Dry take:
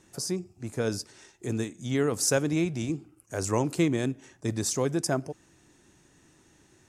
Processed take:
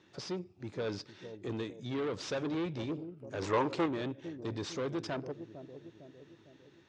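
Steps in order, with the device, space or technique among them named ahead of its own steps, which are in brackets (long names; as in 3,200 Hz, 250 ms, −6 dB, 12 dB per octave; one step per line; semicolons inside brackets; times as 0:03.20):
analogue delay pedal into a guitar amplifier (bucket-brigade delay 454 ms, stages 2,048, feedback 52%, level −15 dB; tube saturation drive 30 dB, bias 0.5; loudspeaker in its box 110–4,500 Hz, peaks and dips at 140 Hz −3 dB, 220 Hz −5 dB, 730 Hz −4 dB, 3,600 Hz +5 dB)
0:03.42–0:03.86: octave-band graphic EQ 500/1,000/2,000/8,000 Hz +6/+8/+5/+4 dB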